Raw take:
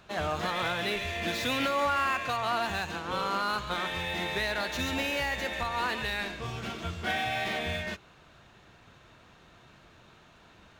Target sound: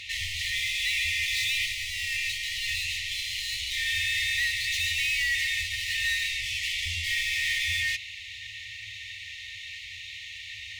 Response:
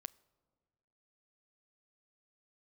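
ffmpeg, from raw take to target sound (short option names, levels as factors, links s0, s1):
-filter_complex "[0:a]asplit=2[s0][s1];[s1]highpass=f=720:p=1,volume=39.8,asoftclip=type=tanh:threshold=0.126[s2];[s0][s2]amix=inputs=2:normalize=0,lowpass=f=3300:p=1,volume=0.501,afftfilt=real='re*(1-between(b*sr/4096,110,1800))':imag='im*(1-between(b*sr/4096,110,1800))':win_size=4096:overlap=0.75"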